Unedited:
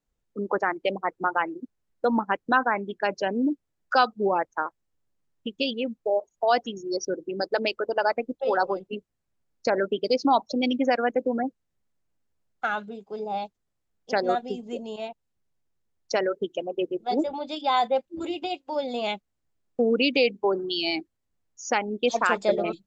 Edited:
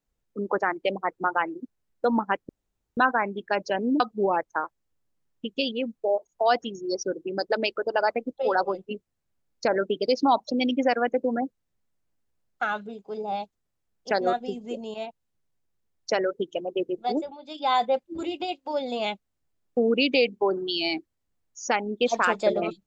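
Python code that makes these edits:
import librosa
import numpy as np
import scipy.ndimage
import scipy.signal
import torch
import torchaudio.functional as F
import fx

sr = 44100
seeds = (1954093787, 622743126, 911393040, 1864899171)

y = fx.edit(x, sr, fx.insert_room_tone(at_s=2.49, length_s=0.48),
    fx.cut(start_s=3.52, length_s=0.5),
    fx.fade_down_up(start_s=17.09, length_s=0.64, db=-12.0, fade_s=0.29), tone=tone)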